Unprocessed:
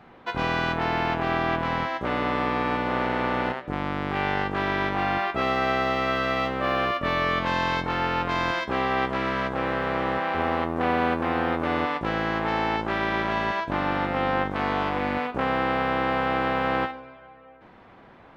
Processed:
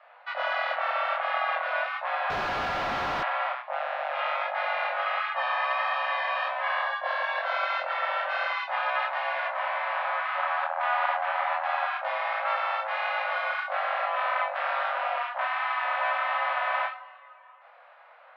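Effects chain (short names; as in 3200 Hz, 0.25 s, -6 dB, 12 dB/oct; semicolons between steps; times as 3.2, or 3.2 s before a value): 6.79–7.51 bell 2000 Hz -14 dB -> -6.5 dB 0.38 oct; 15.44–15.84 HPF 330 Hz 6 dB/oct; frequency shift +480 Hz; chorus voices 2, 1.4 Hz, delay 25 ms, depth 3.1 ms; 2.3–3.23 Schmitt trigger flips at -42.5 dBFS; air absorption 260 m; gain +1.5 dB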